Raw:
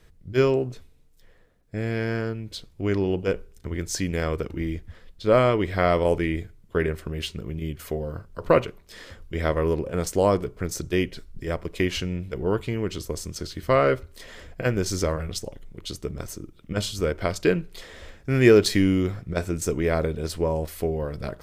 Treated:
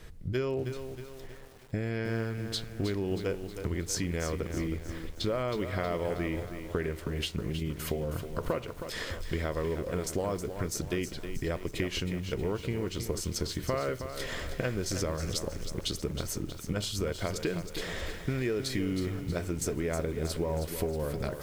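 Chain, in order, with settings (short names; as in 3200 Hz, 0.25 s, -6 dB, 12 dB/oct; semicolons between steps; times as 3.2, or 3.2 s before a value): in parallel at +1.5 dB: limiter -15 dBFS, peak gain reduction 10.5 dB; on the sum: compressor 6:1, threshold -30 dBFS, peak gain reduction 20.5 dB; lo-fi delay 0.317 s, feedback 55%, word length 8-bit, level -8.5 dB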